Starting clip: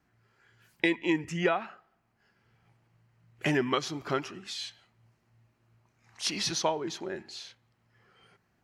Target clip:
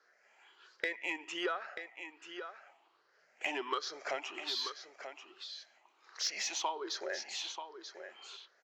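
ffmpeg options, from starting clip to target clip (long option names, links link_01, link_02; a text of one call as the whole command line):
ffmpeg -i in.wav -filter_complex "[0:a]afftfilt=real='re*pow(10,12/40*sin(2*PI*(0.59*log(max(b,1)*sr/1024/100)/log(2)-(1.3)*(pts-256)/sr)))':imag='im*pow(10,12/40*sin(2*PI*(0.59*log(max(b,1)*sr/1024/100)/log(2)-(1.3)*(pts-256)/sr)))':win_size=1024:overlap=0.75,highpass=frequency=450:width=0.5412,highpass=frequency=450:width=1.3066,acompressor=threshold=-39dB:ratio=3,asplit=2[link_01][link_02];[link_02]aecho=0:1:936:0.316[link_03];[link_01][link_03]amix=inputs=2:normalize=0,aresample=16000,aresample=44100,asplit=2[link_04][link_05];[link_05]asoftclip=type=tanh:threshold=-33.5dB,volume=-5.5dB[link_06];[link_04][link_06]amix=inputs=2:normalize=0" out.wav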